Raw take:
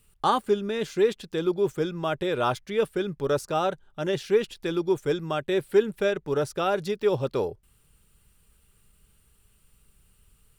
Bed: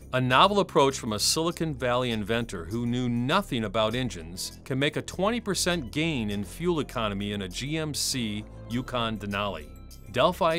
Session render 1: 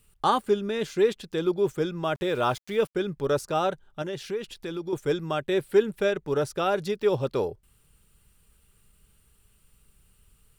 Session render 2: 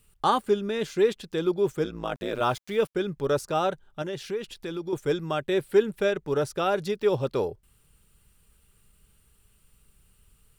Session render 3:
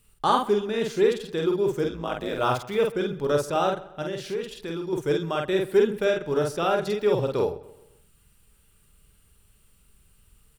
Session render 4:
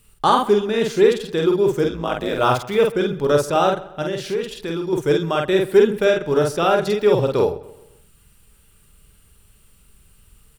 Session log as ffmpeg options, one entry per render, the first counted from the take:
-filter_complex "[0:a]asettb=1/sr,asplit=3[s0][s1][s2];[s0]atrim=end=2.154[s3];[s1]atrim=start=2.15:end=2.95,asetpts=PTS-STARTPTS,afade=t=in:d=0.004:c=qsin,afade=t=out:st=0.796:d=0.004:c=qsin,aeval=exprs='val(0)*gte(abs(val(0)),0.00668)':c=same[s4];[s2]atrim=start=2.946[s5];[s3][s4]acrossfade=d=0.004:c1=hsin:c2=qsin[s6];[s6][s5]acrossfade=d=0.004:c1=qsin:c2=hsin,asettb=1/sr,asplit=3[s7][s8][s9];[s7]atrim=end=4.024[s10];[s8]atrim=start=4.02:end=4.93,asetpts=PTS-STARTPTS,afade=t=in:d=0.004:c=qsin,afade=t=out:st=0.906:d=0.004:c=qsin,acompressor=threshold=0.02:ratio=2:attack=3.2:release=140:knee=1:detection=peak[s11];[s9]atrim=start=4.926[s12];[s10][s11]acrossfade=d=0.004:c1=hsin:c2=qsin[s13];[s13][s12]acrossfade=d=0.004:c1=qsin:c2=hsin"
-filter_complex "[0:a]asettb=1/sr,asplit=3[s0][s1][s2];[s0]atrim=end=1.844[s3];[s1]atrim=start=1.84:end=2.41,asetpts=PTS-STARTPTS,afade=t=in:d=0.004:c=qsin,afade=t=out:st=0.566:d=0.004:c=qsin,tremolo=f=110:d=0.974[s4];[s2]atrim=start=2.406[s5];[s3][s4]acrossfade=d=0.004:c1=hsin:c2=qsin[s6];[s6][s5]acrossfade=d=0.004:c1=qsin:c2=hsin"
-filter_complex "[0:a]asplit=2[s0][s1];[s1]adelay=48,volume=0.708[s2];[s0][s2]amix=inputs=2:normalize=0,asplit=2[s3][s4];[s4]adelay=131,lowpass=f=3800:p=1,volume=0.119,asplit=2[s5][s6];[s6]adelay=131,lowpass=f=3800:p=1,volume=0.45,asplit=2[s7][s8];[s8]adelay=131,lowpass=f=3800:p=1,volume=0.45,asplit=2[s9][s10];[s10]adelay=131,lowpass=f=3800:p=1,volume=0.45[s11];[s3][s5][s7][s9][s11]amix=inputs=5:normalize=0"
-af "volume=2.11,alimiter=limit=0.708:level=0:latency=1"

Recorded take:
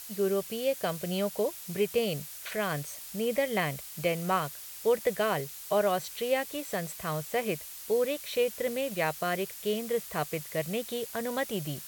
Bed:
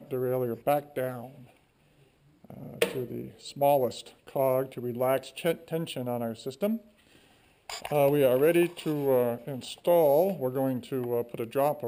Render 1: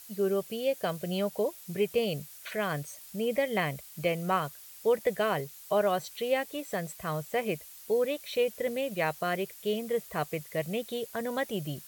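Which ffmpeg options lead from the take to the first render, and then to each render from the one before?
-af "afftdn=nr=7:nf=-44"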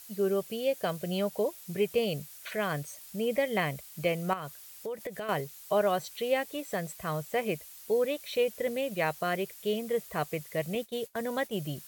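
-filter_complex "[0:a]asettb=1/sr,asplit=3[s0][s1][s2];[s0]atrim=end=4.334[s3];[s1]atrim=start=4.33:end=5.29,asetpts=PTS-STARTPTS,afade=t=in:d=0.004:c=qsin,afade=t=out:st=0.956:d=0.004:c=qsin,acompressor=threshold=0.02:ratio=5:attack=3.2:release=140:knee=1:detection=peak[s4];[s2]atrim=start=5.286[s5];[s3][s4]acrossfade=d=0.004:c1=hsin:c2=qsin[s6];[s6][s5]acrossfade=d=0.004:c1=qsin:c2=hsin,asettb=1/sr,asplit=3[s7][s8][s9];[s7]atrim=end=10.754[s10];[s8]atrim=start=10.75:end=11.55,asetpts=PTS-STARTPTS,afade=t=in:d=0.004:c=qsin,afade=t=out:st=0.796:d=0.004:c=qsin,agate=range=0.0224:threshold=0.0141:ratio=3:release=100:detection=peak[s11];[s9]atrim=start=11.546[s12];[s10][s11]acrossfade=d=0.004:c1=hsin:c2=qsin[s13];[s13][s12]acrossfade=d=0.004:c1=qsin:c2=hsin"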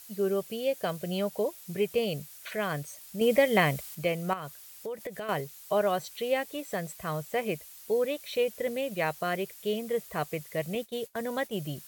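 -filter_complex "[0:a]asettb=1/sr,asplit=3[s0][s1][s2];[s0]atrim=end=3.214[s3];[s1]atrim=start=3.21:end=3.95,asetpts=PTS-STARTPTS,afade=t=in:d=0.004:c=qsin,afade=t=out:st=0.736:d=0.004:c=qsin,acontrast=49[s4];[s2]atrim=start=3.946[s5];[s3][s4]acrossfade=d=0.004:c1=hsin:c2=qsin[s6];[s6][s5]acrossfade=d=0.004:c1=qsin:c2=hsin"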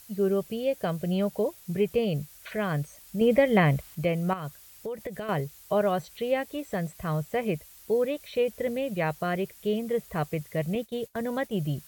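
-filter_complex "[0:a]acrossover=split=3000[s0][s1];[s1]acompressor=threshold=0.00501:ratio=4:attack=1:release=60[s2];[s0][s2]amix=inputs=2:normalize=0,lowshelf=f=200:g=12"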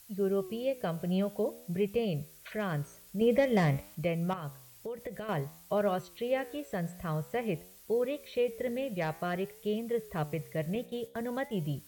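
-filter_complex "[0:a]flanger=delay=9.6:depth=8:regen=88:speed=0.51:shape=triangular,acrossover=split=680[s0][s1];[s1]asoftclip=type=hard:threshold=0.0335[s2];[s0][s2]amix=inputs=2:normalize=0"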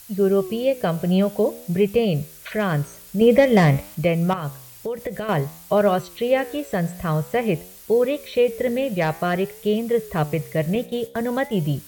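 -af "volume=3.76"

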